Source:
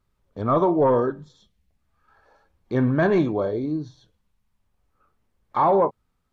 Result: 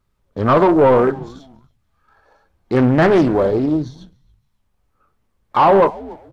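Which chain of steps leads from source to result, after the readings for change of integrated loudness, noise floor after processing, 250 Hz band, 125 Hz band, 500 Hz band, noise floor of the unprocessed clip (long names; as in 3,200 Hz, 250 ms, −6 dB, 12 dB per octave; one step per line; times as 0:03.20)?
+7.5 dB, −68 dBFS, +7.5 dB, +6.5 dB, +7.5 dB, −73 dBFS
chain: echo with shifted repeats 284 ms, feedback 33%, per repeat −130 Hz, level −23 dB
leveller curve on the samples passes 1
highs frequency-modulated by the lows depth 0.45 ms
level +5.5 dB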